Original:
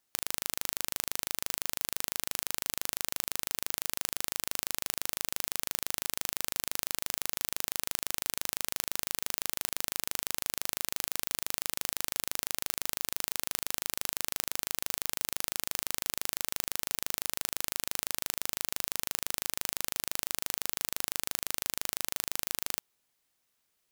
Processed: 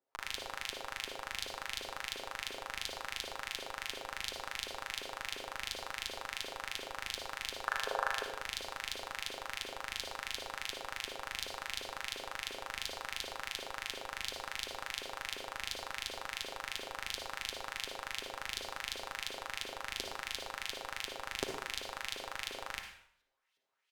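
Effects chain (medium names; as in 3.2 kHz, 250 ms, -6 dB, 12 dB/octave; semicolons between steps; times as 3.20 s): block-companded coder 5-bit; LFO band-pass saw up 2.8 Hz 380–4000 Hz; comb 7.5 ms, depth 45%; in parallel at -8.5 dB: Schmitt trigger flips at -31 dBFS; on the sum: time-frequency box 7.67–8.24 s, 390–1800 Hz +11 dB; reverberation RT60 0.65 s, pre-delay 48 ms, DRR 4 dB; trim +4.5 dB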